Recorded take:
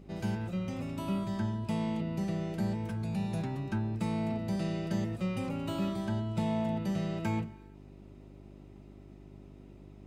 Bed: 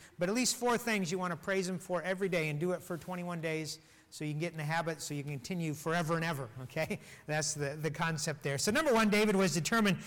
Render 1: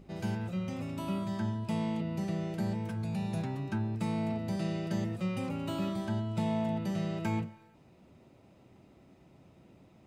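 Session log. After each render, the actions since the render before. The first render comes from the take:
hum removal 50 Hz, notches 11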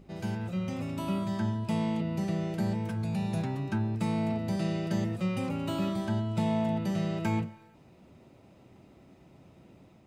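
automatic gain control gain up to 3 dB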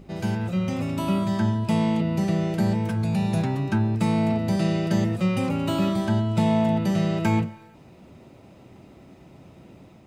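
level +7.5 dB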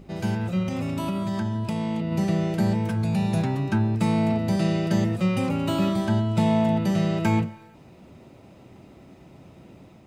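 0:00.63–0:02.12: downward compressor, threshold −23 dBFS

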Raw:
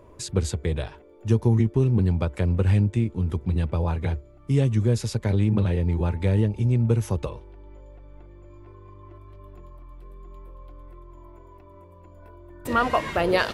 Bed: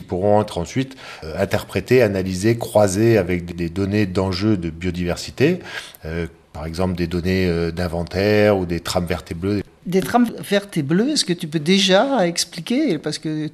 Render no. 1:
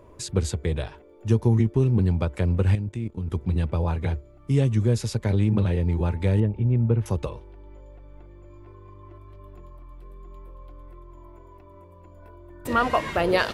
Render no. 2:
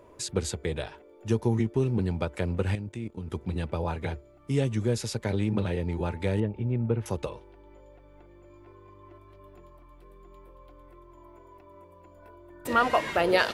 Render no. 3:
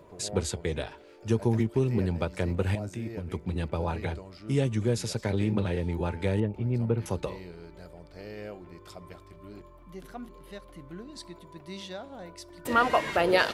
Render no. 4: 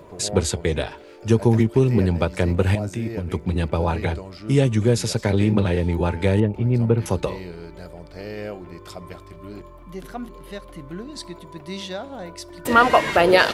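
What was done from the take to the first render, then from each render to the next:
0:02.75–0:03.32: output level in coarse steps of 14 dB; 0:06.40–0:07.06: high-frequency loss of the air 450 metres
low-shelf EQ 170 Hz −11.5 dB; notch filter 1,100 Hz, Q 14
mix in bed −26 dB
level +8.5 dB; brickwall limiter −1 dBFS, peak gain reduction 1.5 dB

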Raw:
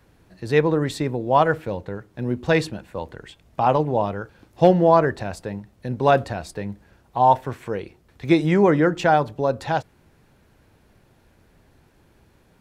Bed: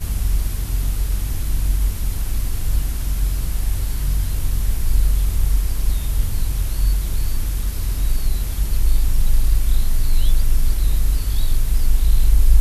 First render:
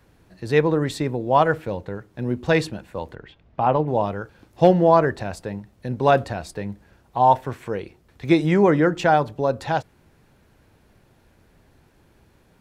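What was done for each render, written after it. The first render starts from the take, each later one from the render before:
0:03.15–0:03.88: high-frequency loss of the air 240 metres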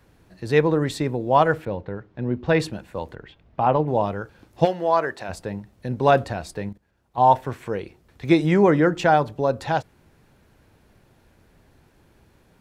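0:01.65–0:02.60: high-frequency loss of the air 200 metres
0:04.64–0:05.28: high-pass filter 1,400 Hz → 580 Hz 6 dB per octave
0:06.69–0:07.18: output level in coarse steps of 17 dB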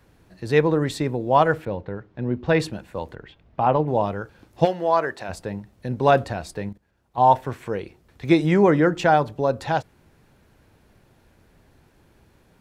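no processing that can be heard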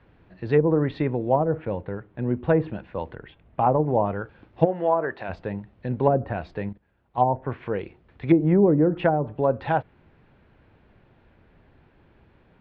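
low-pass filter 3,200 Hz 24 dB per octave
treble cut that deepens with the level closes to 480 Hz, closed at −13 dBFS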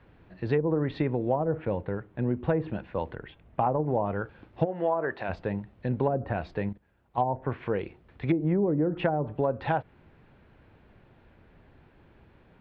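downward compressor 6 to 1, threshold −22 dBFS, peak gain reduction 10 dB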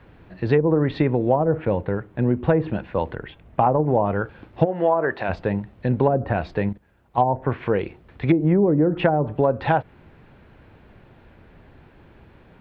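level +7.5 dB

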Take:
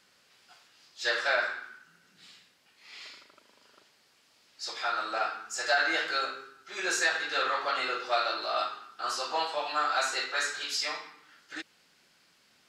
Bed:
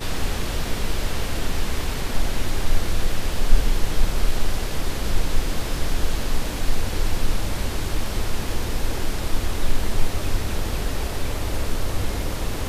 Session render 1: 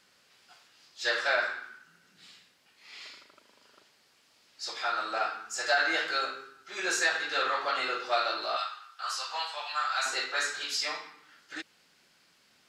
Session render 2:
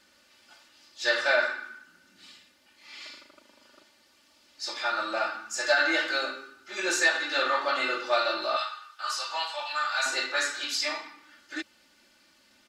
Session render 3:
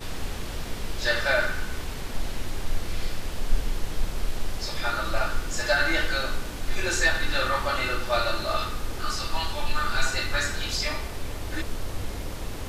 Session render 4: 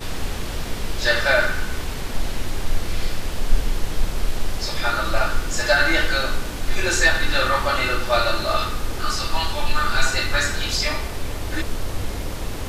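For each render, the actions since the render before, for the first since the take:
0:08.56–0:10.06: high-pass filter 1,100 Hz
low-shelf EQ 390 Hz +4.5 dB; comb filter 3.4 ms, depth 88%
mix in bed −7.5 dB
level +5.5 dB

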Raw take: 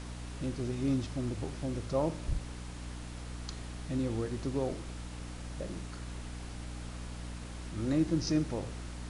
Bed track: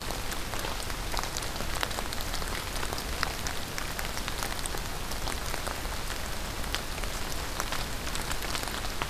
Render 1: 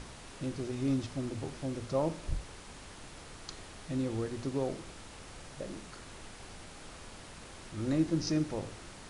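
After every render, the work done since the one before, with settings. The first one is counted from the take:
mains-hum notches 60/120/180/240/300 Hz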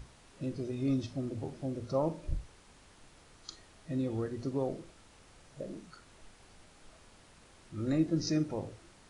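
noise reduction from a noise print 10 dB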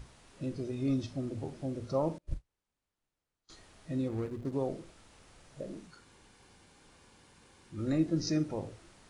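0:02.18–0:03.50: expander for the loud parts 2.5 to 1, over −49 dBFS
0:04.08–0:04.53: running median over 41 samples
0:05.87–0:07.79: notch comb filter 650 Hz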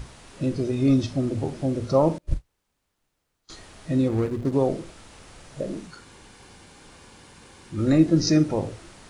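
level +11.5 dB

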